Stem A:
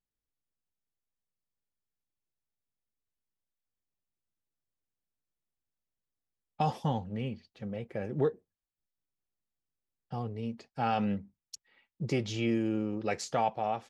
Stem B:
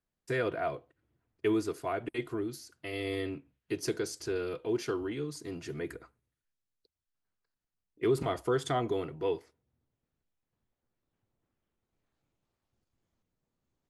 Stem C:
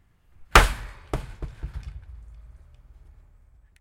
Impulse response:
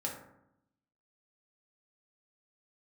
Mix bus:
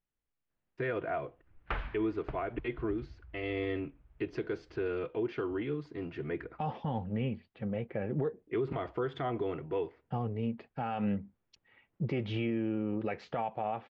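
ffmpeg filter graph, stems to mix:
-filter_complex "[0:a]volume=1.41[s0];[1:a]adelay=500,volume=1.12[s1];[2:a]adelay=1150,volume=0.282[s2];[s0][s1][s2]amix=inputs=3:normalize=0,lowpass=f=2900:w=0.5412,lowpass=f=2900:w=1.3066,alimiter=level_in=1.06:limit=0.0631:level=0:latency=1:release=133,volume=0.944"

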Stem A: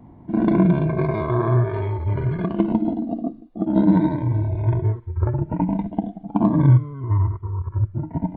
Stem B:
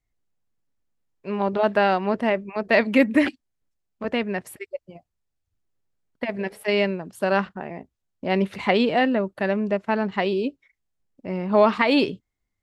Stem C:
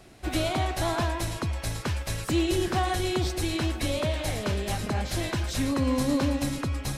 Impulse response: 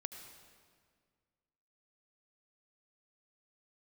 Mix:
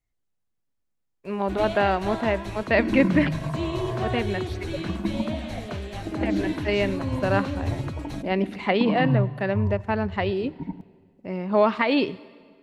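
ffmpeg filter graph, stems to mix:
-filter_complex "[0:a]bandreject=f=60:t=h:w=6,bandreject=f=120:t=h:w=6,bandreject=f=180:t=h:w=6,asplit=2[s0][s1];[s1]afreqshift=-0.52[s2];[s0][s2]amix=inputs=2:normalize=1,adelay=2450,volume=0.398,asplit=2[s3][s4];[s4]volume=0.299[s5];[1:a]volume=0.631,asplit=2[s6][s7];[s7]volume=0.316[s8];[2:a]bandreject=f=5100:w=13,adelay=1250,volume=0.501,asplit=2[s9][s10];[s10]volume=0.237[s11];[3:a]atrim=start_sample=2205[s12];[s5][s8][s11]amix=inputs=3:normalize=0[s13];[s13][s12]afir=irnorm=-1:irlink=0[s14];[s3][s6][s9][s14]amix=inputs=4:normalize=0,acrossover=split=5000[s15][s16];[s16]acompressor=threshold=0.00126:ratio=4:attack=1:release=60[s17];[s15][s17]amix=inputs=2:normalize=0"

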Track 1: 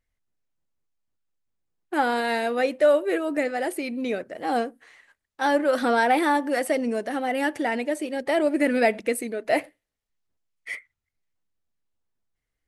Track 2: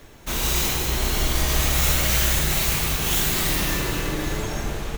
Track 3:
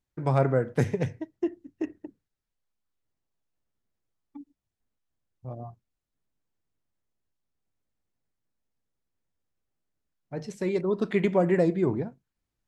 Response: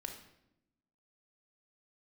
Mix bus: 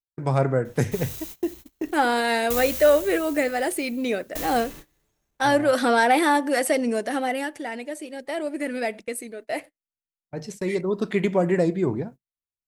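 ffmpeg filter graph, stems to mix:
-filter_complex "[0:a]agate=range=0.0224:threshold=0.00794:ratio=3:detection=peak,lowpass=10000,acontrast=36,volume=0.668,afade=t=out:st=7.23:d=0.25:silence=0.375837[s0];[1:a]asoftclip=type=tanh:threshold=0.1,aeval=exprs='val(0)*pow(10,-32*if(lt(mod(0.54*n/s,1),2*abs(0.54)/1000),1-mod(0.54*n/s,1)/(2*abs(0.54)/1000),(mod(0.54*n/s,1)-2*abs(0.54)/1000)/(1-2*abs(0.54)/1000))/20)':c=same,adelay=650,volume=0.316[s1];[2:a]volume=1.19[s2];[s0][s1][s2]amix=inputs=3:normalize=0,agate=range=0.0708:threshold=0.01:ratio=16:detection=peak,crystalizer=i=1.5:c=0"

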